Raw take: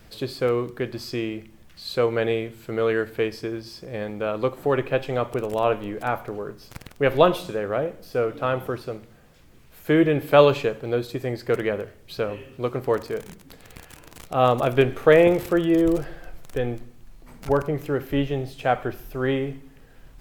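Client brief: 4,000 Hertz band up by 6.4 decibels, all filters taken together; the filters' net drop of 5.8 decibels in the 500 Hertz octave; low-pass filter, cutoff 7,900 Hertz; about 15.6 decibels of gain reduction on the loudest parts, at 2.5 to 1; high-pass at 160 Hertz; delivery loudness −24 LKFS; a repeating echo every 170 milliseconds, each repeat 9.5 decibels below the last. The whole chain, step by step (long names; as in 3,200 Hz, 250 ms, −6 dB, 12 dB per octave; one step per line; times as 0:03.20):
high-pass filter 160 Hz
low-pass filter 7,900 Hz
parametric band 500 Hz −7 dB
parametric band 4,000 Hz +8.5 dB
downward compressor 2.5 to 1, threshold −38 dBFS
repeating echo 170 ms, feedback 33%, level −9.5 dB
level +14 dB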